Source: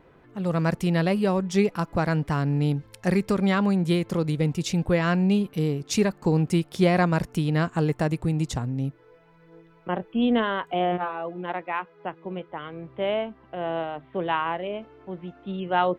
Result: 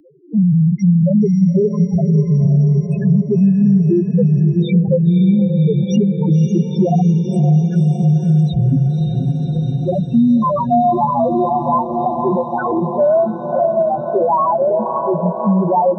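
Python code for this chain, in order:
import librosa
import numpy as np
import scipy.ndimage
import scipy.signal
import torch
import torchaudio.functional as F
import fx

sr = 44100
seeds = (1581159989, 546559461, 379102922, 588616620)

p1 = fx.highpass(x, sr, hz=170.0, slope=6)
p2 = fx.leveller(p1, sr, passes=5)
p3 = fx.spec_topn(p2, sr, count=1)
p4 = p3 + fx.echo_diffused(p3, sr, ms=557, feedback_pct=66, wet_db=-9.0, dry=0)
p5 = fx.band_squash(p4, sr, depth_pct=70)
y = p5 * 10.0 ** (7.0 / 20.0)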